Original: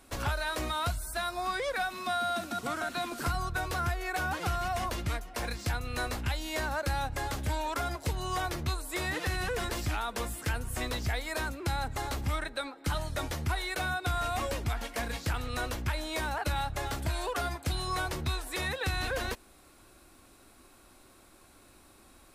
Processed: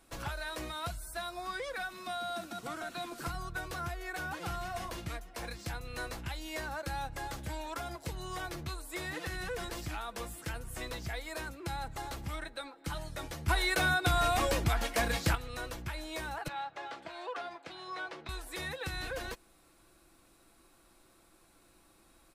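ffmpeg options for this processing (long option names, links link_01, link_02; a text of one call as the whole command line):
ffmpeg -i in.wav -filter_complex "[0:a]asettb=1/sr,asplit=3[link_01][link_02][link_03];[link_01]atrim=end=4.394[link_04];[link_02]atrim=start=4.39:end=5.11,asetpts=PTS-STARTPTS,afade=type=in:duration=0.004:curve=qsin,afade=type=out:start_time=0.716:duration=0.004:curve=qsin,asplit=2[link_05][link_06];[link_06]adelay=44,volume=-10dB[link_07];[link_05][link_07]amix=inputs=2:normalize=0,atrim=end_sample=31752[link_08];[link_03]atrim=start=5.106[link_09];[link_04][link_08]acrossfade=duration=0.004:curve1=hsin:curve2=qsin[link_10];[link_10][link_09]acrossfade=duration=0.004:curve1=qsin:curve2=hsin,asettb=1/sr,asplit=3[link_11][link_12][link_13];[link_11]atrim=end=16.484[link_14];[link_12]atrim=start=16.48:end=18.29,asetpts=PTS-STARTPTS,afade=type=in:duration=0.004:curve=qsin,afade=type=out:start_time=1.806:duration=0.004:curve=qsin,highpass=380,lowpass=3500[link_15];[link_13]atrim=start=18.286[link_16];[link_14][link_15]acrossfade=duration=0.004:curve1=hsin:curve2=qsin[link_17];[link_17][link_16]acrossfade=duration=0.004:curve1=qsin:curve2=hsin,asplit=3[link_18][link_19][link_20];[link_18]atrim=end=13.482[link_21];[link_19]atrim=start=13.478:end=15.352,asetpts=PTS-STARTPTS,volume=10dB[link_22];[link_20]atrim=start=15.348[link_23];[link_21][link_22]acrossfade=duration=0.004:curve1=hsin:curve2=hsin[link_24];[link_24][link_23]acrossfade=duration=0.004:curve1=hsin:curve2=hsin,aecho=1:1:6:0.36,volume=-6.5dB" out.wav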